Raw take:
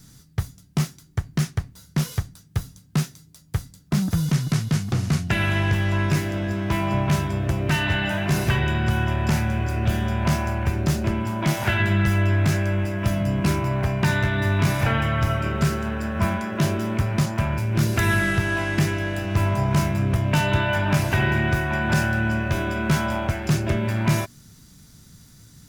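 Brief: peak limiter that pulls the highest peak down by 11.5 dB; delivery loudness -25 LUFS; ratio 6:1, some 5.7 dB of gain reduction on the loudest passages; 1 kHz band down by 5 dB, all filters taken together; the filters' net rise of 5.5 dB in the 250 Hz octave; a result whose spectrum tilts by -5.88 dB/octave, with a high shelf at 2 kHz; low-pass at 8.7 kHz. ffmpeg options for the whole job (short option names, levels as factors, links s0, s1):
-af "lowpass=8700,equalizer=f=250:t=o:g=8.5,equalizer=f=1000:t=o:g=-8.5,highshelf=f=2000:g=6,acompressor=threshold=0.112:ratio=6,volume=1.5,alimiter=limit=0.158:level=0:latency=1"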